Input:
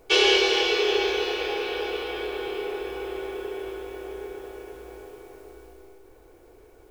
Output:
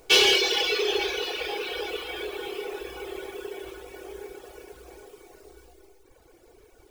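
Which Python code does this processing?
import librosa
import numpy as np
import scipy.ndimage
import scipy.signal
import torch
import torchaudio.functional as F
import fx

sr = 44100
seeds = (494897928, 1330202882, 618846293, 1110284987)

y = scipy.ndimage.median_filter(x, 3, mode='constant')
y = fx.high_shelf(y, sr, hz=3200.0, db=11.0)
y = 10.0 ** (-9.5 / 20.0) * np.tanh(y / 10.0 ** (-9.5 / 20.0))
y = fx.dereverb_blind(y, sr, rt60_s=1.7)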